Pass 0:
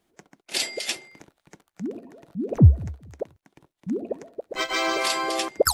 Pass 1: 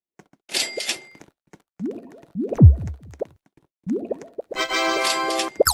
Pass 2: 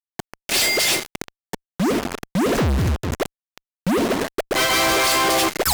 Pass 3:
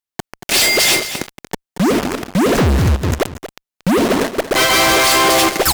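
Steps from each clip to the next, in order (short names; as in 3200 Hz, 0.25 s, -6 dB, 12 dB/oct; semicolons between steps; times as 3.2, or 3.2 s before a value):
expander -47 dBFS; gain +3 dB
sample leveller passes 5; fuzz box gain 39 dB, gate -42 dBFS; gain -4 dB
echo 0.231 s -12 dB; gain +5.5 dB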